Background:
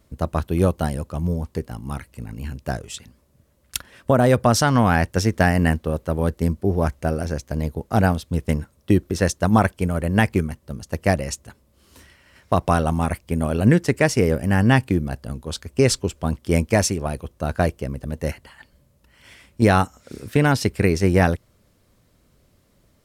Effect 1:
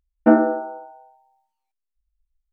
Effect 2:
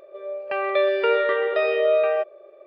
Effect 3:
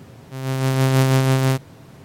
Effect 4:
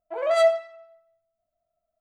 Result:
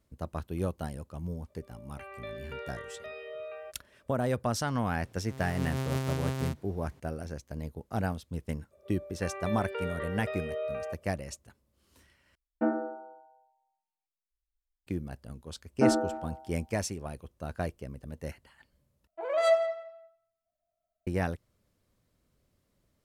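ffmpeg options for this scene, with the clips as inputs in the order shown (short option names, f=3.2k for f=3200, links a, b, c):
-filter_complex "[2:a]asplit=2[a][b];[1:a]asplit=2[c][d];[0:a]volume=-13.5dB[e];[a]equalizer=f=490:t=o:w=2.8:g=-5[f];[d]asplit=2[g][h];[h]adelay=280,highpass=300,lowpass=3.4k,asoftclip=type=hard:threshold=-9.5dB,volume=-21dB[i];[g][i]amix=inputs=2:normalize=0[j];[4:a]asplit=2[k][l];[l]adelay=173,lowpass=f=2.1k:p=1,volume=-11dB,asplit=2[m][n];[n]adelay=173,lowpass=f=2.1k:p=1,volume=0.25,asplit=2[o][p];[p]adelay=173,lowpass=f=2.1k:p=1,volume=0.25[q];[k][m][o][q]amix=inputs=4:normalize=0[r];[e]asplit=3[s][t][u];[s]atrim=end=12.354[v];[c]atrim=end=2.52,asetpts=PTS-STARTPTS,volume=-14.5dB[w];[t]atrim=start=14.866:end=19.074[x];[r]atrim=end=2,asetpts=PTS-STARTPTS,volume=-5dB[y];[u]atrim=start=21.066[z];[f]atrim=end=2.66,asetpts=PTS-STARTPTS,volume=-17.5dB,afade=t=in:d=0.004:c=hsin,afade=t=out:st=2.656:d=0.004:c=hsin,adelay=1480[aa];[3:a]atrim=end=2.04,asetpts=PTS-STARTPTS,volume=-15.5dB,afade=t=in:d=0.004:c=hsin,afade=t=out:st=2.036:d=0.004:c=hsin,adelay=4960[ab];[b]atrim=end=2.66,asetpts=PTS-STARTPTS,volume=-15.5dB,afade=t=in:d=0.004:c=hsin,afade=t=out:st=2.656:d=0.004:c=hsin,adelay=8710[ac];[j]atrim=end=2.52,asetpts=PTS-STARTPTS,volume=-10dB,afade=t=in:d=0.004:c=hsin,afade=t=out:st=2.516:d=0.004:c=hsin,adelay=15550[ad];[v][w]acrossfade=d=0.004:c1=hsin:c2=hsin[ae];[ae][x]acrossfade=d=0.004:c1=hsin:c2=hsin[af];[af][y]acrossfade=d=0.004:c1=hsin:c2=hsin[ag];[ag][z]acrossfade=d=0.004:c1=hsin:c2=hsin[ah];[ah][aa][ab][ac][ad]amix=inputs=5:normalize=0"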